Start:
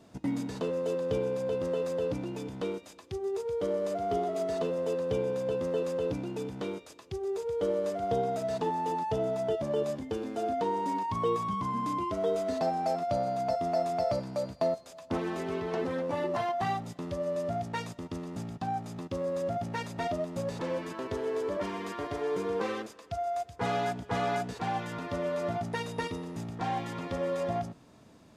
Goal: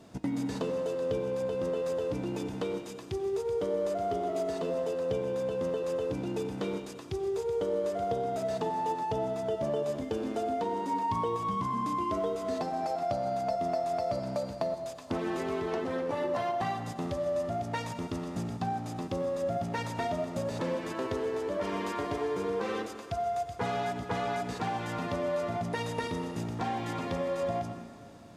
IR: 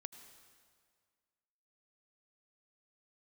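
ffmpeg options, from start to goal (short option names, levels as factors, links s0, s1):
-filter_complex "[0:a]acompressor=threshold=0.0251:ratio=6[s0];[1:a]atrim=start_sample=2205,asetrate=40131,aresample=44100[s1];[s0][s1]afir=irnorm=-1:irlink=0,volume=2.51"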